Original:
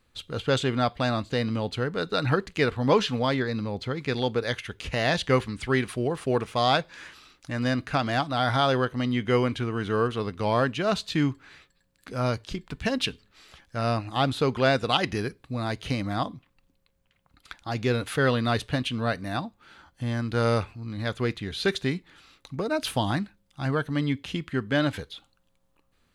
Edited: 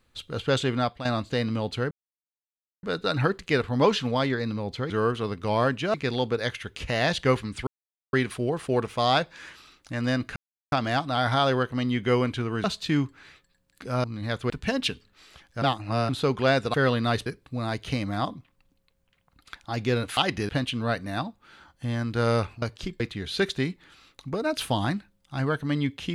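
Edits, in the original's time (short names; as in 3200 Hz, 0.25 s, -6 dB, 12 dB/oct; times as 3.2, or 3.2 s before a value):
0.69–1.05 fade out equal-power, to -11 dB
1.91 insert silence 0.92 s
5.71 insert silence 0.46 s
7.94 insert silence 0.36 s
9.86–10.9 move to 3.98
12.3–12.68 swap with 20.8–21.26
13.8–14.27 reverse
14.92–15.24 swap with 18.15–18.67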